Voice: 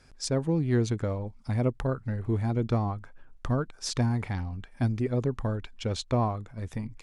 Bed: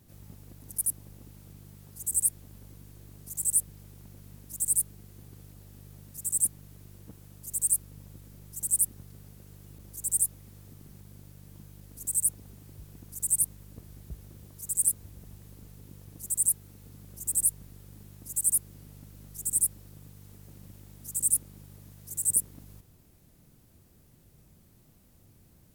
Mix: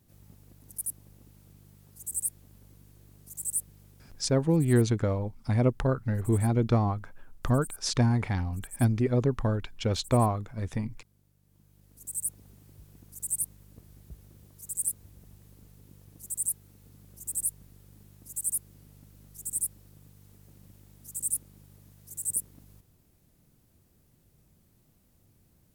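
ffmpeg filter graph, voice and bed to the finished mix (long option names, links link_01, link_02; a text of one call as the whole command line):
ffmpeg -i stem1.wav -i stem2.wav -filter_complex "[0:a]adelay=4000,volume=2.5dB[link_01];[1:a]volume=7dB,afade=type=out:start_time=3.88:duration=0.67:silence=0.251189,afade=type=in:start_time=11.43:duration=0.97:silence=0.237137[link_02];[link_01][link_02]amix=inputs=2:normalize=0" out.wav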